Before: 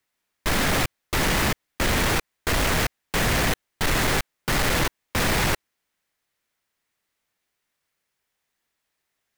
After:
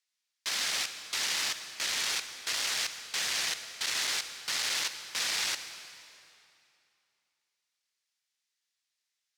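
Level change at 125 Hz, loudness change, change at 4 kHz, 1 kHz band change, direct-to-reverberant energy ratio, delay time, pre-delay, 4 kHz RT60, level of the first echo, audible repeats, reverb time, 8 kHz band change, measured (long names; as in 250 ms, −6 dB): below −30 dB, −7.0 dB, −1.5 dB, −15.0 dB, 9.0 dB, no echo audible, 38 ms, 2.3 s, no echo audible, no echo audible, 2.7 s, −2.5 dB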